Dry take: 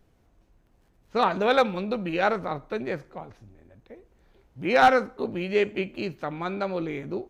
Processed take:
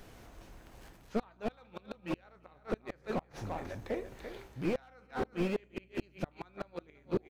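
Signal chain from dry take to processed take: reverse; compression 6:1, threshold -34 dBFS, peak gain reduction 19 dB; reverse; bass shelf 460 Hz -8.5 dB; de-hum 77.21 Hz, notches 18; on a send: delay 341 ms -10.5 dB; on the sum: inverted gate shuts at -32 dBFS, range -37 dB; hum 60 Hz, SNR 29 dB; slew-rate limiter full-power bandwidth 3.1 Hz; trim +16 dB

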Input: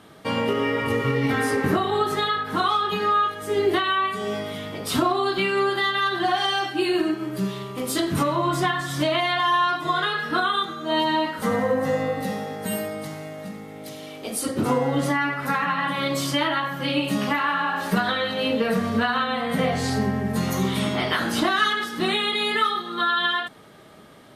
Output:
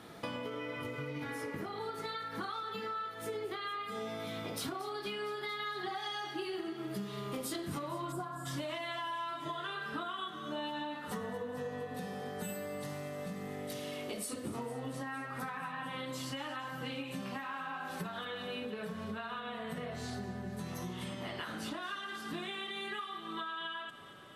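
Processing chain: Doppler pass-by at 7.83 s, 21 m/s, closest 24 m; compression 12:1, threshold -52 dBFS, peak gain reduction 33 dB; spectral selection erased 8.12–8.46 s, 1.7–6.9 kHz; thinning echo 230 ms, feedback 74%, high-pass 420 Hz, level -15.5 dB; trim +14.5 dB

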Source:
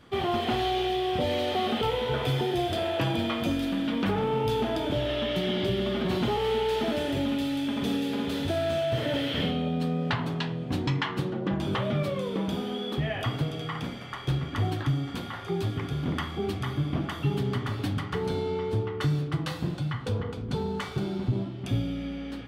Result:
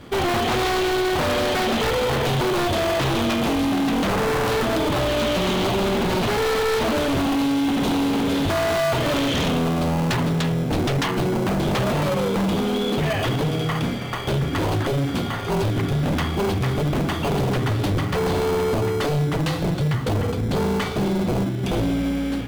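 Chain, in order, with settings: in parallel at -5 dB: sample-and-hold 24×; on the sum: sine folder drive 10 dB, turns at -13.5 dBFS; trim -4.5 dB

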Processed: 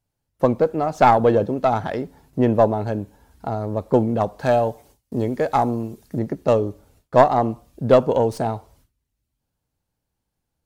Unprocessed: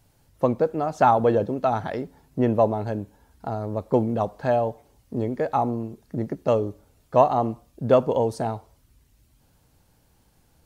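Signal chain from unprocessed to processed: tracing distortion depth 0.077 ms; gate with hold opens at -48 dBFS; 4.39–6.19 s: treble shelf 3.6 kHz +8 dB; trim +3.5 dB

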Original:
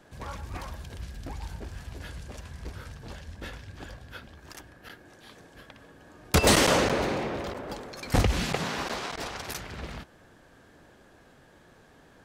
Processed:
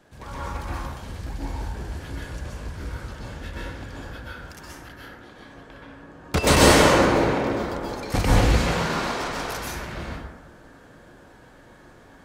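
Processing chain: 4.92–6.38 s: low-pass 3.5 kHz 6 dB/octave; plate-style reverb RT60 1.1 s, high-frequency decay 0.45×, pre-delay 115 ms, DRR -6.5 dB; trim -1 dB

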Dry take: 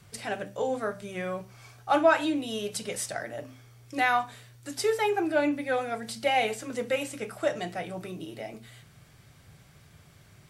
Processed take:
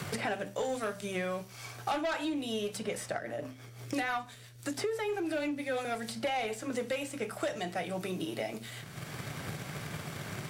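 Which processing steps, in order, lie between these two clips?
3.18–5.85 s: rotary cabinet horn 6 Hz; waveshaping leveller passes 1; saturation -17.5 dBFS, distortion -16 dB; three bands compressed up and down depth 100%; trim -6.5 dB

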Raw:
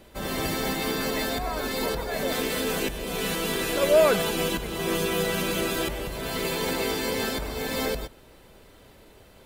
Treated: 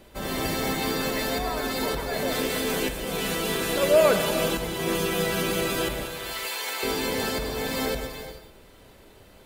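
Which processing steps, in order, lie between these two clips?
6.06–6.83 s: high-pass 960 Hz 12 dB/octave; gated-style reverb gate 460 ms flat, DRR 7 dB

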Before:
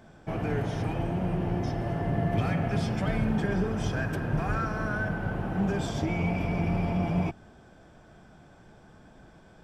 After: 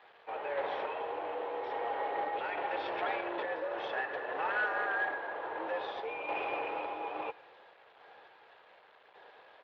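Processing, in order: random-step tremolo; in parallel at -4.5 dB: wavefolder -26 dBFS; on the sum: bit crusher 9-bit; feedback delay 111 ms, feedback 42%, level -22 dB; mistuned SSB +130 Hz 330–3600 Hz; trim -2.5 dB; Speex 34 kbps 16 kHz

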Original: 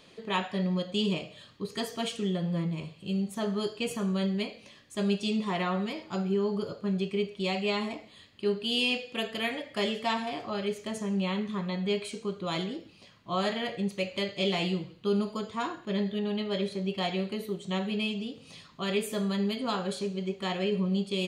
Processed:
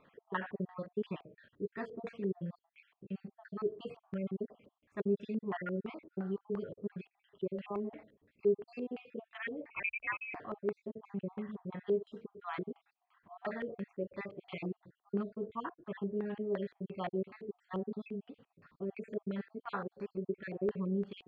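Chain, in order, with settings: random holes in the spectrogram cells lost 48%; LFO low-pass square 2.9 Hz 420–1600 Hz; 9.69–10.34 s: frequency inversion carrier 2.8 kHz; trim -8 dB

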